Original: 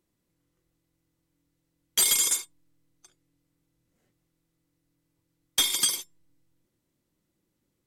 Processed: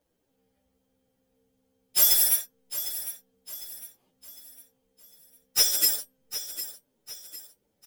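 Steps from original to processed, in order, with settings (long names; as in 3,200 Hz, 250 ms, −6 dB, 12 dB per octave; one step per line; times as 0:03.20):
phase-vocoder pitch shift without resampling +8 semitones
repeating echo 754 ms, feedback 41%, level −12.5 dB
level +6.5 dB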